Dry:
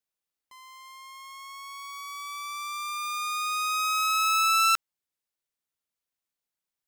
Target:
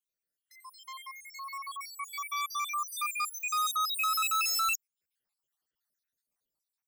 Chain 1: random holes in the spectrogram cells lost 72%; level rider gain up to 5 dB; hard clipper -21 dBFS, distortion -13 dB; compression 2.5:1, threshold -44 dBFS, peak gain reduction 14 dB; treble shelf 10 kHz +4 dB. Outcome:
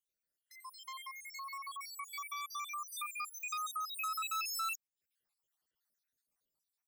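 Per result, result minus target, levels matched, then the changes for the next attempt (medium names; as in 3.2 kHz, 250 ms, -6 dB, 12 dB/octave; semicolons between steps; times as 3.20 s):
compression: peak gain reduction +14 dB; hard clipper: distortion -7 dB
remove: compression 2.5:1, threshold -44 dBFS, peak gain reduction 14 dB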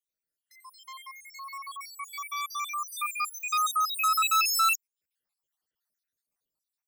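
hard clipper: distortion -7 dB
change: hard clipper -27.5 dBFS, distortion -6 dB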